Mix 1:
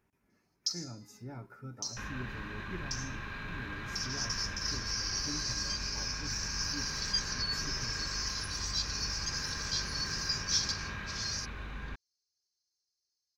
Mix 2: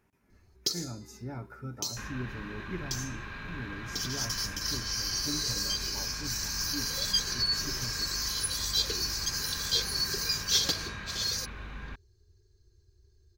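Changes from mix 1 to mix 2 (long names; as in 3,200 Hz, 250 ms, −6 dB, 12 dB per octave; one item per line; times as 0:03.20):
speech +5.0 dB
first sound: remove resonant band-pass 5,400 Hz, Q 4.6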